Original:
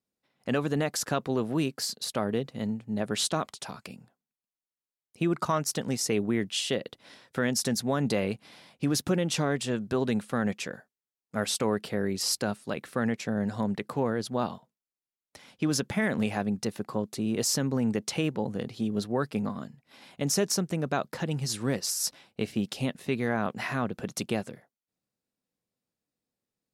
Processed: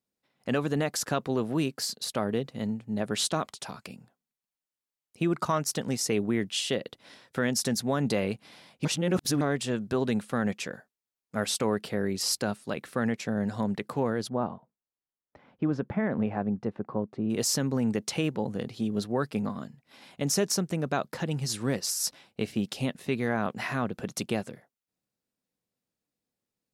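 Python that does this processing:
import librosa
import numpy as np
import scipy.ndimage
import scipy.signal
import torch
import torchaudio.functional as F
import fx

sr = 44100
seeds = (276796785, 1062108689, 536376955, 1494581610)

y = fx.lowpass(x, sr, hz=1300.0, slope=12, at=(14.28, 17.29), fade=0.02)
y = fx.edit(y, sr, fx.reverse_span(start_s=8.85, length_s=0.56), tone=tone)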